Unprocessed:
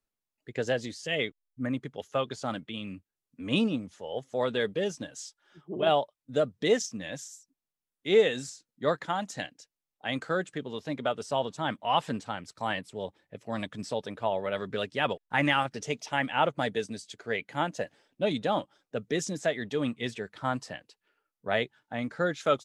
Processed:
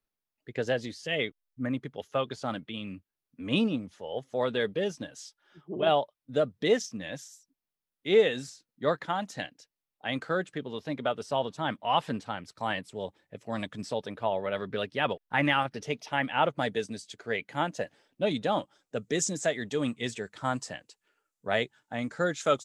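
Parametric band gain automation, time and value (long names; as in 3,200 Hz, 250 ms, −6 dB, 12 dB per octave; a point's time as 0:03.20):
parametric band 7,400 Hz 0.64 octaves
0:12.44 −6 dB
0:12.96 +1 dB
0:13.62 +1 dB
0:14.58 −10.5 dB
0:16.21 −10.5 dB
0:16.70 −0.5 dB
0:18.33 −0.5 dB
0:19.02 +9.5 dB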